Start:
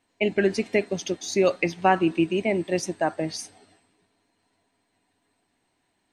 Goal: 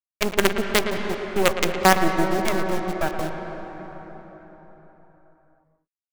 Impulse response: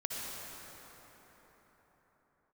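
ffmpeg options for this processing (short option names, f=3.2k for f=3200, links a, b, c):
-filter_complex "[0:a]afwtdn=0.0251,acrusher=bits=3:dc=4:mix=0:aa=0.000001,asplit=2[a][b];[1:a]atrim=start_sample=2205,lowpass=3.8k,adelay=113[c];[b][c]afir=irnorm=-1:irlink=0,volume=-8dB[d];[a][d]amix=inputs=2:normalize=0,volume=2.5dB"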